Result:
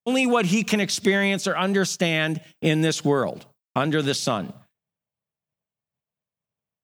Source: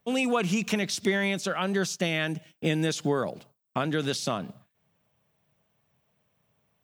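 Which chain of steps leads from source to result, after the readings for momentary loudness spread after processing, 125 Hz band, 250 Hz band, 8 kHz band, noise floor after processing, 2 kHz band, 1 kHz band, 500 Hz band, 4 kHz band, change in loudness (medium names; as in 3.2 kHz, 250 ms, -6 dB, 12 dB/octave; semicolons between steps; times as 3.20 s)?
8 LU, +5.5 dB, +5.5 dB, +5.5 dB, under -85 dBFS, +5.5 dB, +5.5 dB, +5.5 dB, +5.5 dB, +5.5 dB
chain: expander -56 dBFS; trim +5.5 dB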